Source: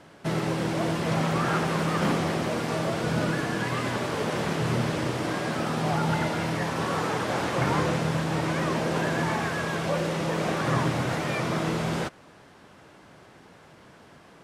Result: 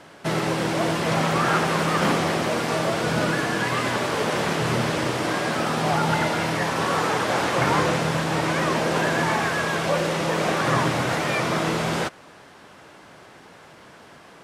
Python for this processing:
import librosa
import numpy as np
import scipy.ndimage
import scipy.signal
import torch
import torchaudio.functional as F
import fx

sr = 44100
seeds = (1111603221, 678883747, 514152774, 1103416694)

y = fx.low_shelf(x, sr, hz=320.0, db=-7.0)
y = y * librosa.db_to_amplitude(6.5)